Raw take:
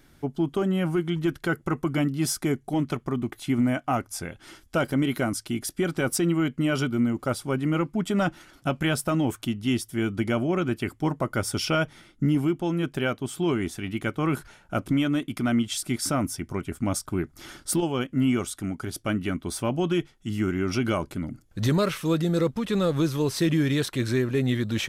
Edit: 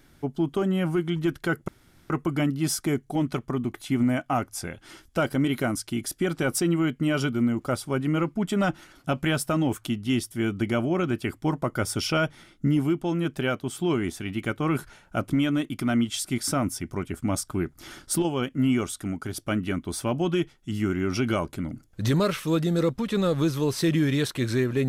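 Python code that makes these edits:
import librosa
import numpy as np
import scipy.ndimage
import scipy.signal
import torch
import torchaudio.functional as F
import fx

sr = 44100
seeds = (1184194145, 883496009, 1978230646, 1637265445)

y = fx.edit(x, sr, fx.insert_room_tone(at_s=1.68, length_s=0.42), tone=tone)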